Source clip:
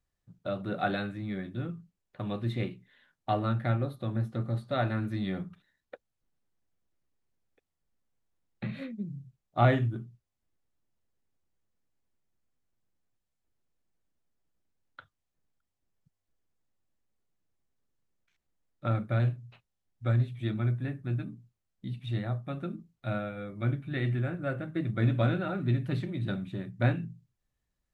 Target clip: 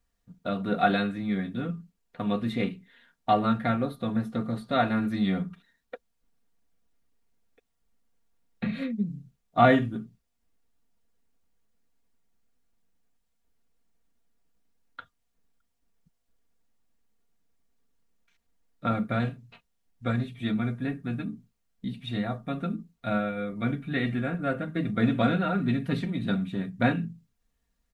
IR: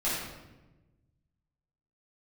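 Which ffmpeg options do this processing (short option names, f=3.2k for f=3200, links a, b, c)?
-af "aecho=1:1:4.3:0.67,volume=4.5dB"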